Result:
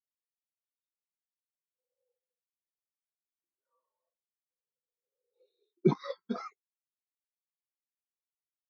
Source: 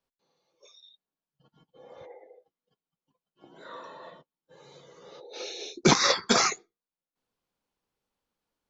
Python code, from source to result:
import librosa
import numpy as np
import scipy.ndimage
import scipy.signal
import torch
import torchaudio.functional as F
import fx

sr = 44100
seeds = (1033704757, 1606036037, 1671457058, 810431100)

y = scipy.signal.sosfilt(scipy.signal.butter(2, 5000.0, 'lowpass', fs=sr, output='sos'), x)
y = fx.spectral_expand(y, sr, expansion=2.5)
y = F.gain(torch.from_numpy(y), -5.0).numpy()